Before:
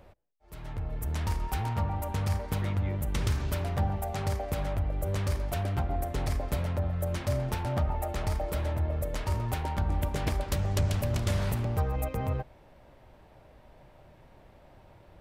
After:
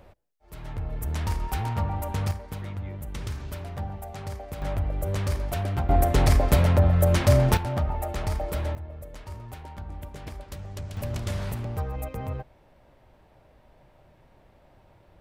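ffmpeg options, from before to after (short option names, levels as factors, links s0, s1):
-af "asetnsamples=n=441:p=0,asendcmd='2.31 volume volume -5dB;4.62 volume volume 2.5dB;5.89 volume volume 11dB;7.57 volume volume 2dB;8.75 volume volume -9.5dB;10.97 volume volume -2dB',volume=1.33"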